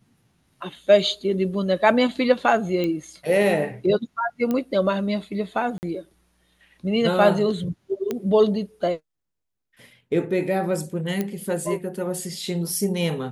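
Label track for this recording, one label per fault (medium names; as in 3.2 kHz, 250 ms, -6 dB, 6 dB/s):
2.840000	2.840000	pop -15 dBFS
4.510000	4.510000	pop -13 dBFS
5.780000	5.830000	dropout 49 ms
8.110000	8.110000	pop -13 dBFS
11.210000	11.210000	pop -12 dBFS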